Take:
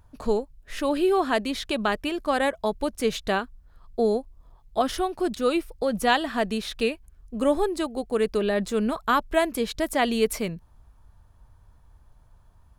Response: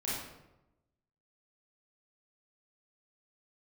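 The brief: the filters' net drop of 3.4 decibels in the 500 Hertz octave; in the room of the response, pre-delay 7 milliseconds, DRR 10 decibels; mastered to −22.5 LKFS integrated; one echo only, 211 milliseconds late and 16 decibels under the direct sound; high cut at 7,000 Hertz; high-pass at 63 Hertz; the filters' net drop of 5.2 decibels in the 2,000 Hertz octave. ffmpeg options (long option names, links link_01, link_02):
-filter_complex "[0:a]highpass=63,lowpass=7000,equalizer=frequency=500:width_type=o:gain=-4,equalizer=frequency=2000:width_type=o:gain=-6.5,aecho=1:1:211:0.158,asplit=2[link_01][link_02];[1:a]atrim=start_sample=2205,adelay=7[link_03];[link_02][link_03]afir=irnorm=-1:irlink=0,volume=-14.5dB[link_04];[link_01][link_04]amix=inputs=2:normalize=0,volume=5.5dB"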